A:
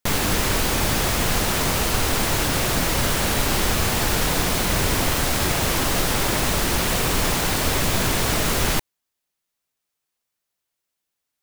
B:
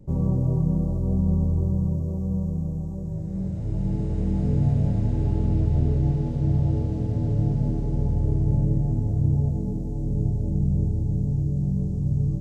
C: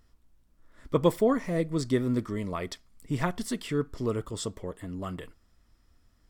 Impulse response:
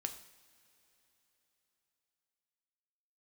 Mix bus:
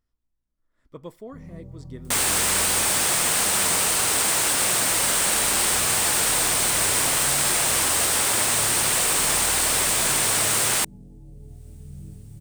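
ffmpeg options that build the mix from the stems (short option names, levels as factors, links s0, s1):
-filter_complex "[0:a]highpass=f=710:p=1,equalizer=f=8600:t=o:w=0.4:g=12.5,acompressor=mode=upward:threshold=0.00501:ratio=2.5,adelay=2050,volume=1[s0];[1:a]acrusher=bits=9:mix=0:aa=0.000001,flanger=delay=19:depth=4.9:speed=0.53,adelay=1250,volume=0.178[s1];[2:a]volume=0.158[s2];[s0][s1][s2]amix=inputs=3:normalize=0"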